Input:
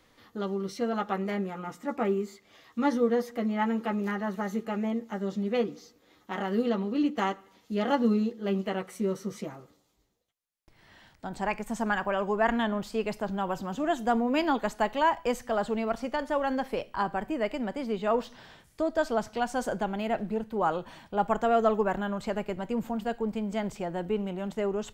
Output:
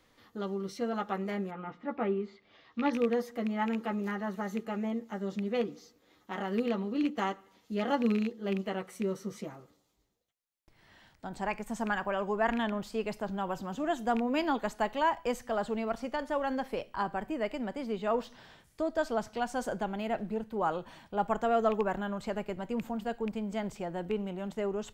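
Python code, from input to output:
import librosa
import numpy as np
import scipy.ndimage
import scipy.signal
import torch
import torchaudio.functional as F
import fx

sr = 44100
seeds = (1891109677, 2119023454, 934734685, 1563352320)

y = fx.rattle_buzz(x, sr, strikes_db=-29.0, level_db=-24.0)
y = fx.lowpass(y, sr, hz=fx.line((1.5, 3100.0), (2.92, 5200.0)), slope=24, at=(1.5, 2.92), fade=0.02)
y = F.gain(torch.from_numpy(y), -3.5).numpy()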